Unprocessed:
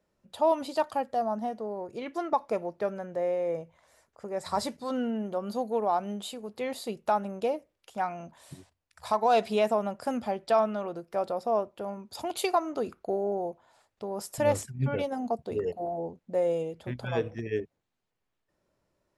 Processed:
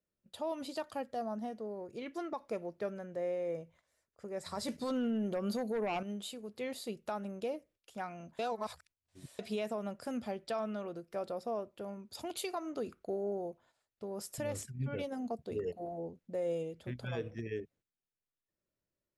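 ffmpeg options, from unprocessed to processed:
-filter_complex "[0:a]asettb=1/sr,asplit=3[a][b][c];[a]atrim=end=4.684[d];[b]atrim=start=4.68:end=6.03,asetpts=PTS-STARTPTS,afade=t=in:d=0.004:c=qsin,afade=t=out:st=1.346:d=0.004:c=qsin,aeval=exprs='0.158*sin(PI/2*1.78*val(0)/0.158)':c=same[e];[c]atrim=start=6.026[f];[d][e]acrossfade=d=0.004:c1=hsin:c2=qsin[g];[g][f]acrossfade=d=0.004:c1=qsin:c2=hsin,asplit=3[h][i][j];[h]atrim=end=8.392[k];[i]atrim=start=8.388:end=9.392,asetpts=PTS-STARTPTS,areverse[l];[j]atrim=start=9.388[m];[k][l]acrossfade=d=0.004:c1=hsin:c2=hsin[n];[n][m]acrossfade=d=0.004:c1=hsin:c2=hsin,agate=range=-10dB:threshold=-57dB:ratio=16:detection=peak,equalizer=f=860:w=1.5:g=-8,alimiter=limit=-23.5dB:level=0:latency=1:release=119,volume=-4.5dB"

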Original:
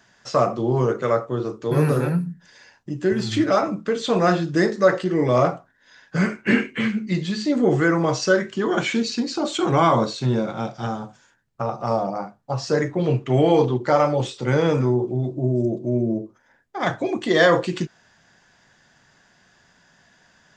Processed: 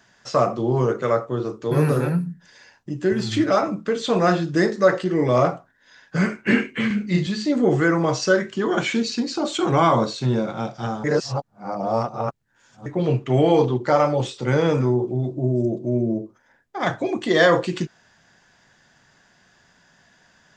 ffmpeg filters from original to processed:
-filter_complex "[0:a]asettb=1/sr,asplit=3[a][b][c];[a]atrim=end=6.874[d];[b]atrim=start=6.87:end=7.27,asetpts=PTS-STARTPTS,afade=t=in:d=0.004:c=qsin,afade=t=out:st=0.396:d=0.004:c=qsin,asplit=2[e][f];[f]adelay=34,volume=-2dB[g];[e][g]amix=inputs=2:normalize=0,atrim=end_sample=17640[h];[c]atrim=start=7.266[i];[d][h]acrossfade=d=0.004:c1=hsin:c2=qsin[j];[j][i]acrossfade=d=0.004:c1=qsin:c2=hsin,asplit=3[k][l][m];[k]atrim=end=11.042[n];[l]atrim=start=11.038:end=12.862,asetpts=PTS-STARTPTS,areverse[o];[m]atrim=start=12.858[p];[n][o]acrossfade=d=0.004:c1=hsin:c2=hsin[q];[q][p]acrossfade=d=0.004:c1=hsin:c2=hsin"

